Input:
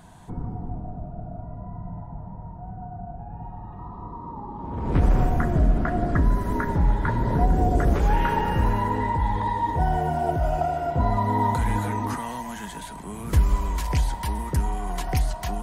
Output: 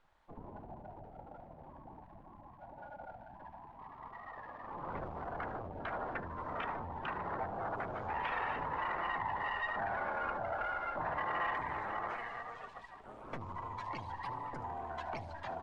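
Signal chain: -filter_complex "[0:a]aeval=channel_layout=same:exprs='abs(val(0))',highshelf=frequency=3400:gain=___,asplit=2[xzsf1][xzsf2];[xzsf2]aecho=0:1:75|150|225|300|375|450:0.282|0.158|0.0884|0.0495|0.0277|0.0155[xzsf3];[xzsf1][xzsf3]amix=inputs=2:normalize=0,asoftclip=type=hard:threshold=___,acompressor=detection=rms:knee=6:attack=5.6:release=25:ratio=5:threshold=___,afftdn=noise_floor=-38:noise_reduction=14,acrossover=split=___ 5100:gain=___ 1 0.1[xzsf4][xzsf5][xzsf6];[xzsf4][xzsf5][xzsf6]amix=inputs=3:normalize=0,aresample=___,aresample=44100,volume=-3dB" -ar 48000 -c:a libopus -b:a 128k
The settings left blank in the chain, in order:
-3, -12.5dB, -20dB, 580, 0.2, 22050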